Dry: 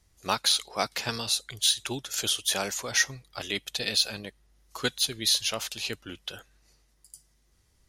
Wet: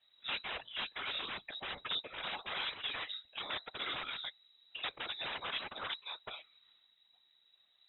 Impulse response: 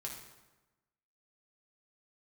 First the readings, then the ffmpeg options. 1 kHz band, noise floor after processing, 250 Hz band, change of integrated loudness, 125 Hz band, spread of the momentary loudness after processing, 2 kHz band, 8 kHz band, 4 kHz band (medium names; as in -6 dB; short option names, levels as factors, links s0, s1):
-8.0 dB, -71 dBFS, -17.5 dB, -12.5 dB, -19.0 dB, 5 LU, -7.5 dB, under -40 dB, -11.5 dB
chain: -af "aeval=exprs='(mod(16.8*val(0)+1,2)-1)/16.8':c=same,lowpass=f=3300:t=q:w=0.5098,lowpass=f=3300:t=q:w=0.6013,lowpass=f=3300:t=q:w=0.9,lowpass=f=3300:t=q:w=2.563,afreqshift=-3900,afftfilt=real='hypot(re,im)*cos(2*PI*random(0))':imag='hypot(re,im)*sin(2*PI*random(1))':win_size=512:overlap=0.75,volume=1.41"